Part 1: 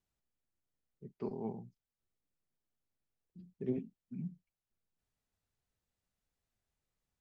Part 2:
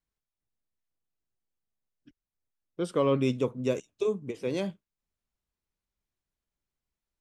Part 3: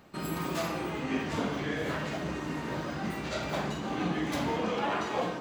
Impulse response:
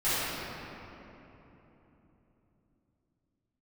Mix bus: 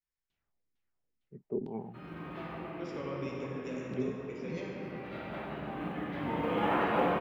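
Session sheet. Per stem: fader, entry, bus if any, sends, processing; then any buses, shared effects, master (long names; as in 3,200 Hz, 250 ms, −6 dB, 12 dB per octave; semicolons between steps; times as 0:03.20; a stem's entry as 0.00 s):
0.0 dB, 0.30 s, no send, high-shelf EQ 3,900 Hz +10.5 dB; auto-filter low-pass saw down 2.2 Hz 240–3,600 Hz
−7.0 dB, 0.00 s, send −7.5 dB, downward compressor, threshold −26 dBFS, peak gain reduction 6 dB; Chebyshev low-pass with heavy ripple 7,200 Hz, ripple 9 dB
0:02.59 −14.5 dB → 0:03.03 −22.5 dB → 0:04.59 −22.5 dB → 0:05.12 −12.5 dB → 0:06.13 −12.5 dB → 0:06.64 −3.5 dB, 1.80 s, send −9 dB, low-pass filter 3,000 Hz 24 dB per octave; log-companded quantiser 8 bits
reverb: on, RT60 3.5 s, pre-delay 6 ms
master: no processing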